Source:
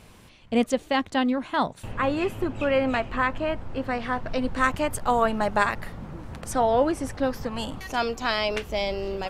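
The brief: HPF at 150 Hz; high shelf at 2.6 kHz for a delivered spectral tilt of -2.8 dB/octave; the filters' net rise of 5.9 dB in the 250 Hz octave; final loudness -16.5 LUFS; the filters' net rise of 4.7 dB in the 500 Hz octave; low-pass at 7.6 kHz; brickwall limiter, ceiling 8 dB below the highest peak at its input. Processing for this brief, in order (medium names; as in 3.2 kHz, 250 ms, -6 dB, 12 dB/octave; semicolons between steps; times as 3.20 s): high-pass 150 Hz; low-pass 7.6 kHz; peaking EQ 250 Hz +6 dB; peaking EQ 500 Hz +4 dB; treble shelf 2.6 kHz +8.5 dB; trim +6.5 dB; peak limiter -4.5 dBFS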